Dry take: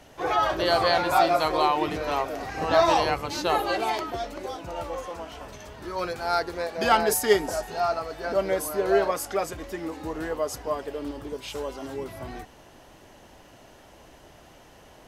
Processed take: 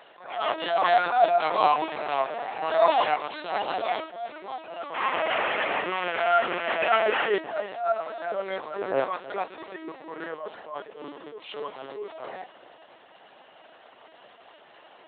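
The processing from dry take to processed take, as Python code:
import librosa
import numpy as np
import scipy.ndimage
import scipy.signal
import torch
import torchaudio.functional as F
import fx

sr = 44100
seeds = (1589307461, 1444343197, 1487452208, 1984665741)

y = fx.delta_mod(x, sr, bps=16000, step_db=-20.0, at=(4.95, 7.35))
y = y + 0.85 * np.pad(y, (int(2.8 * sr / 1000.0), 0))[:len(y)]
y = fx.echo_feedback(y, sr, ms=324, feedback_pct=41, wet_db=-18)
y = fx.lpc_vocoder(y, sr, seeds[0], excitation='pitch_kept', order=10)
y = scipy.signal.sosfilt(scipy.signal.butter(2, 490.0, 'highpass', fs=sr, output='sos'), y)
y = fx.attack_slew(y, sr, db_per_s=100.0)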